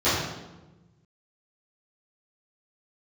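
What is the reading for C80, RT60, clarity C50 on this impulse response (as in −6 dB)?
3.0 dB, 1.1 s, 0.0 dB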